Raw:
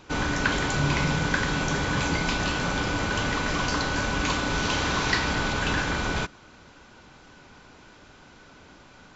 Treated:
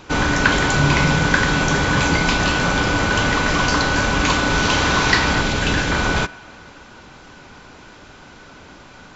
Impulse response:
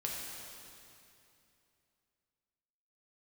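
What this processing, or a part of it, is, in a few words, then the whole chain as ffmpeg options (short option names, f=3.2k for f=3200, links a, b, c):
filtered reverb send: -filter_complex "[0:a]asplit=2[a][b];[b]highpass=430,lowpass=3.1k[c];[1:a]atrim=start_sample=2205[d];[c][d]afir=irnorm=-1:irlink=0,volume=-19dB[e];[a][e]amix=inputs=2:normalize=0,asettb=1/sr,asplit=3[f][g][h];[f]atrim=end=5.414[i];[g]atrim=start=5.41:end=5.92,asetpts=PTS-STARTPTS,afade=t=in:d=0.004:c=qsin,afade=t=out:st=0.506:d=0.004:c=qsin,equalizer=f=1.1k:t=o:w=1.3:g=-5.5[j];[h]atrim=start=5.916[k];[i][j]acrossfade=d=0.004:c1=hsin:c2=qsin[l];[l][k]acrossfade=d=0.004:c1=qsin:c2=hsin,volume=8dB"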